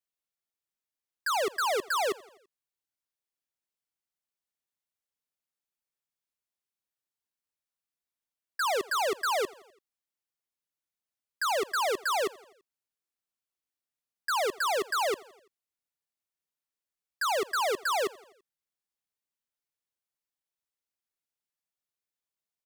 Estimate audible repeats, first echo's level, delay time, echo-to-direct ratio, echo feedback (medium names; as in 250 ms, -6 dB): 3, -22.5 dB, 84 ms, -21.0 dB, 58%